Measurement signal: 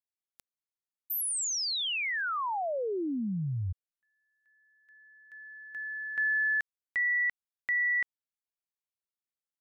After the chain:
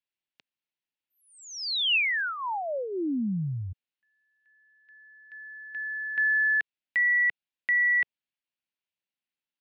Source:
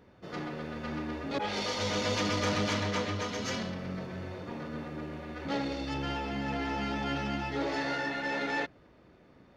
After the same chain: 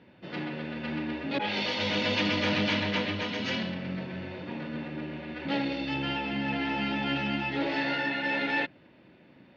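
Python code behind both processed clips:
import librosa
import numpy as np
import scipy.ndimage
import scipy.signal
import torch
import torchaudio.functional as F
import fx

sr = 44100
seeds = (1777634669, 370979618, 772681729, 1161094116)

y = fx.cabinet(x, sr, low_hz=140.0, low_slope=12, high_hz=4200.0, hz=(440.0, 710.0, 1200.0, 2700.0), db=(-8, -5, -10, 5))
y = y * 10.0 ** (5.0 / 20.0)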